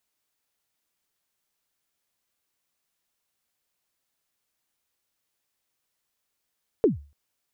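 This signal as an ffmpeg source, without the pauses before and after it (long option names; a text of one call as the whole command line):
ffmpeg -f lavfi -i "aevalsrc='0.251*pow(10,-3*t/0.35)*sin(2*PI*(490*0.139/log(72/490)*(exp(log(72/490)*min(t,0.139)/0.139)-1)+72*max(t-0.139,0)))':duration=0.29:sample_rate=44100" out.wav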